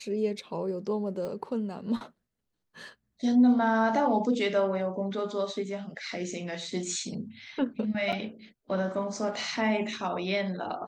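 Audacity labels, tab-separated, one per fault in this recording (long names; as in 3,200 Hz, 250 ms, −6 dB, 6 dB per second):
1.250000	1.250000	click −25 dBFS
8.120000	8.130000	drop-out 6.6 ms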